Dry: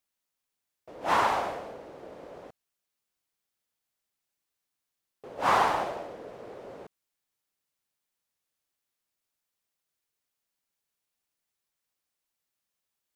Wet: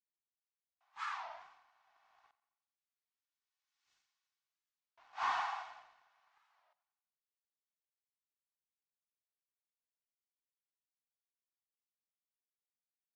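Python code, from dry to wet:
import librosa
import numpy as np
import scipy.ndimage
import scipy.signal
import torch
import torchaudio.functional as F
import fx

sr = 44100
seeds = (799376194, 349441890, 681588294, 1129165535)

y = fx.doppler_pass(x, sr, speed_mps=27, closest_m=2.0, pass_at_s=3.93)
y = scipy.signal.sosfilt(scipy.signal.butter(8, 830.0, 'highpass', fs=sr, output='sos'), y)
y = fx.peak_eq(y, sr, hz=6900.0, db=11.5, octaves=1.3)
y = y + 0.42 * np.pad(y, (int(2.7 * sr / 1000.0), 0))[:len(y)]
y = fx.leveller(y, sr, passes=1)
y = fx.air_absorb(y, sr, metres=210.0)
y = fx.echo_feedback(y, sr, ms=90, feedback_pct=55, wet_db=-17)
y = fx.record_warp(y, sr, rpm=33.33, depth_cents=250.0)
y = F.gain(torch.from_numpy(y), 12.5).numpy()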